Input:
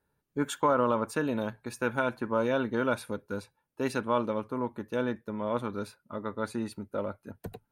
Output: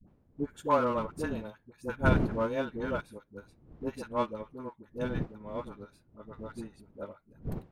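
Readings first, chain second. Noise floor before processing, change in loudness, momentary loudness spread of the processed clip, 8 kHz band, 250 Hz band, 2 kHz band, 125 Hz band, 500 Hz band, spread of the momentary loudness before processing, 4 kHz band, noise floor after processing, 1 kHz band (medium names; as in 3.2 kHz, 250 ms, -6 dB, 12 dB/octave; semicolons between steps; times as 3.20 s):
-80 dBFS, -1.5 dB, 20 LU, under -10 dB, -3.0 dB, -3.5 dB, +3.5 dB, -4.0 dB, 12 LU, -6.0 dB, -67 dBFS, -3.0 dB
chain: wind noise 220 Hz -36 dBFS; in parallel at -4.5 dB: hard clipper -25.5 dBFS, distortion -10 dB; on the sum: phase dispersion highs, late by 79 ms, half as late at 550 Hz; upward expansion 2.5:1, over -32 dBFS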